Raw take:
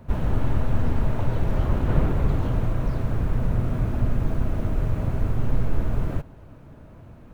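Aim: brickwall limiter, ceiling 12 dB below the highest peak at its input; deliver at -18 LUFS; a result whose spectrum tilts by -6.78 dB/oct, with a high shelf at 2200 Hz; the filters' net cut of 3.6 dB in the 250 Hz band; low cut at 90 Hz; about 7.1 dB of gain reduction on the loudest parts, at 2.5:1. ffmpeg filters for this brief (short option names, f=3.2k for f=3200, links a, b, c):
-af "highpass=90,equalizer=f=250:t=o:g=-5,highshelf=f=2.2k:g=6.5,acompressor=threshold=-33dB:ratio=2.5,volume=24dB,alimiter=limit=-9dB:level=0:latency=1"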